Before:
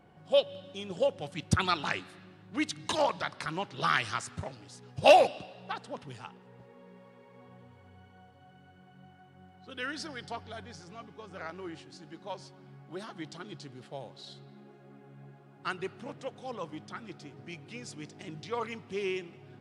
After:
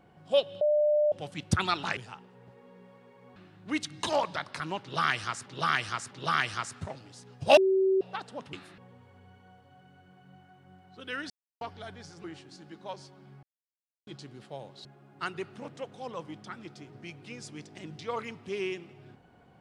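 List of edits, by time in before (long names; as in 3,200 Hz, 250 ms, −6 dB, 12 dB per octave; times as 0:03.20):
0:00.61–0:01.12: beep over 598 Hz −21 dBFS
0:01.97–0:02.22: swap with 0:06.09–0:07.48
0:03.67–0:04.32: repeat, 3 plays
0:05.13–0:05.57: beep over 382 Hz −21 dBFS
0:10.00–0:10.31: silence
0:10.94–0:11.65: remove
0:12.84–0:13.48: silence
0:14.26–0:15.29: remove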